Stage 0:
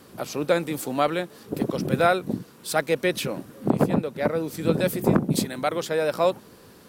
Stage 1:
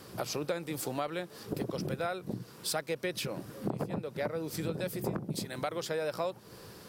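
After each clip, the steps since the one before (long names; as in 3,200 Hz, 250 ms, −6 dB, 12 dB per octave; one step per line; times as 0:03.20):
thirty-one-band graphic EQ 125 Hz +11 dB, 250 Hz −7 dB, 5,000 Hz +5 dB
downward compressor 6 to 1, threshold −31 dBFS, peak gain reduction 16.5 dB
parametric band 130 Hz −7.5 dB 0.26 octaves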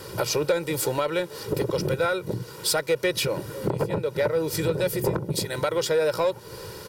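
comb filter 2.1 ms, depth 68%
in parallel at −4 dB: gain into a clipping stage and back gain 30.5 dB
on the sum: level +5 dB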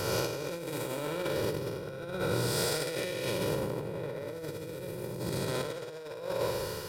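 spectrum smeared in time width 416 ms
flutter between parallel walls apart 10.1 metres, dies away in 0.45 s
compressor whose output falls as the input rises −33 dBFS, ratio −0.5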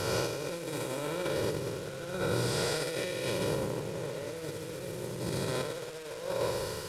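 linear delta modulator 64 kbit/s, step −39 dBFS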